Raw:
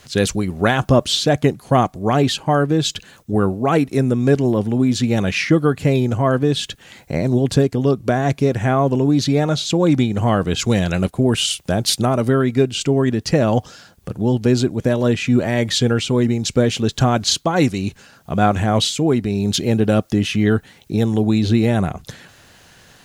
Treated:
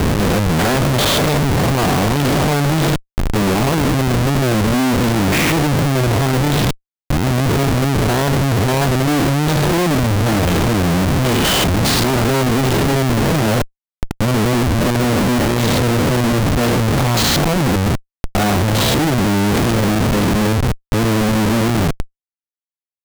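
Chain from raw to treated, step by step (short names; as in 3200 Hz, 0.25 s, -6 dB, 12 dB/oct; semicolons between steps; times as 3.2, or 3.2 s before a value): stepped spectrum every 0.2 s; Schmitt trigger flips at -26 dBFS; gain +5.5 dB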